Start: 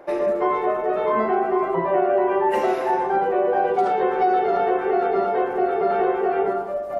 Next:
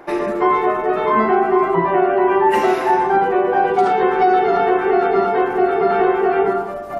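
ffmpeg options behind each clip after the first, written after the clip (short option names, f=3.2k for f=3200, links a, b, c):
-af "equalizer=f=560:t=o:w=0.44:g=-13,volume=8dB"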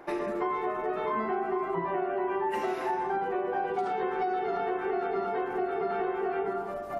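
-af "acompressor=threshold=-21dB:ratio=3,volume=-8dB"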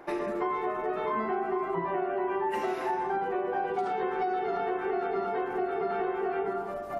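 -af anull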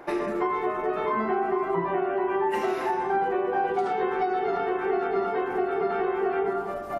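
-filter_complex "[0:a]asplit=2[a][b];[b]adelay=28,volume=-11dB[c];[a][c]amix=inputs=2:normalize=0,volume=4dB"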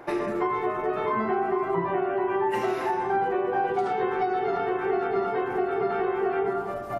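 -af "equalizer=f=120:t=o:w=0.29:g=13.5"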